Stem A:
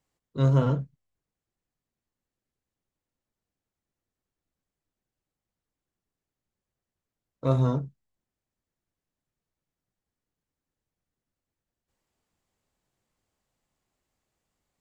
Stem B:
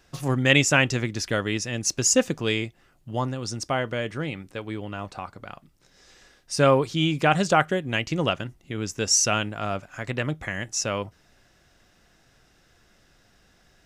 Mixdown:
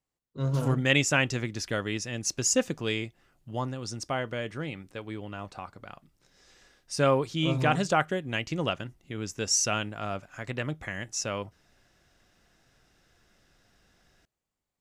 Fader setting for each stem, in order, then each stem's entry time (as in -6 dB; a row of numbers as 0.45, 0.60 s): -7.0, -5.0 dB; 0.00, 0.40 s